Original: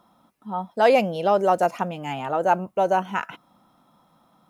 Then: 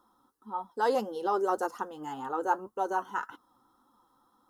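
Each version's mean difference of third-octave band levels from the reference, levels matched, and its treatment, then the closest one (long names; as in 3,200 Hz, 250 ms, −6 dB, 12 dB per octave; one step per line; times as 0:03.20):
4.5 dB: phaser with its sweep stopped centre 640 Hz, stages 6
flanger 1.8 Hz, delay 3.2 ms, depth 4.8 ms, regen +53%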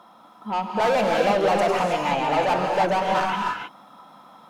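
9.5 dB: mid-hump overdrive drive 28 dB, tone 2,900 Hz, clips at −6.5 dBFS
reverb whose tail is shaped and stops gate 340 ms rising, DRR 0 dB
level −9 dB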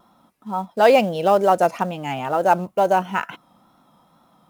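2.0 dB: pitch vibrato 2.2 Hz 42 cents
in parallel at −7 dB: floating-point word with a short mantissa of 2 bits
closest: third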